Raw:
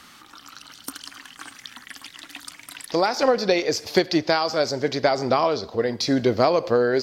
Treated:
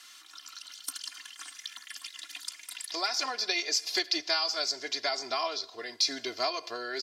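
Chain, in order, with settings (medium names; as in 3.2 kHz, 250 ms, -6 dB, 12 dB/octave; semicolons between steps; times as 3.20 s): band-pass filter 6.1 kHz, Q 0.6; comb 2.9 ms, depth 98%; trim -2 dB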